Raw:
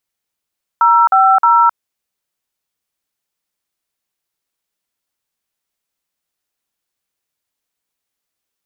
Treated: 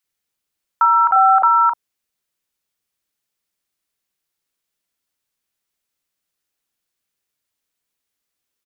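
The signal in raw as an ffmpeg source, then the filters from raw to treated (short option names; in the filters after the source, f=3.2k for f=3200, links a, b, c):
-f lavfi -i "aevalsrc='0.335*clip(min(mod(t,0.311),0.263-mod(t,0.311))/0.002,0,1)*(eq(floor(t/0.311),0)*(sin(2*PI*941*mod(t,0.311))+sin(2*PI*1336*mod(t,0.311)))+eq(floor(t/0.311),1)*(sin(2*PI*770*mod(t,0.311))+sin(2*PI*1336*mod(t,0.311)))+eq(floor(t/0.311),2)*(sin(2*PI*941*mod(t,0.311))+sin(2*PI*1336*mod(t,0.311))))':d=0.933:s=44100"
-filter_complex "[0:a]acrossover=split=800[a][b];[a]adelay=40[c];[c][b]amix=inputs=2:normalize=0"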